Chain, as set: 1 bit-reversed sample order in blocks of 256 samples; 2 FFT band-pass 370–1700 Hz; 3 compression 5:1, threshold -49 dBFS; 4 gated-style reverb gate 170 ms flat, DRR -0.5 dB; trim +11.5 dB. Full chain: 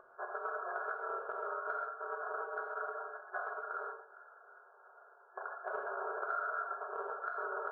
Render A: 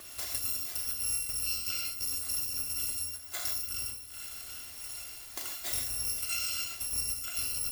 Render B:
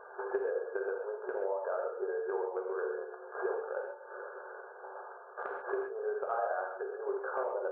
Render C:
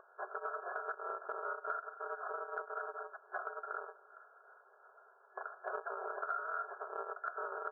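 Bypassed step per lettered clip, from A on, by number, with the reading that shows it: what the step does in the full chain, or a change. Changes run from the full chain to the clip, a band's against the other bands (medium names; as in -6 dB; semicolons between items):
2, momentary loudness spread change -9 LU; 1, momentary loudness spread change -7 LU; 4, momentary loudness spread change -4 LU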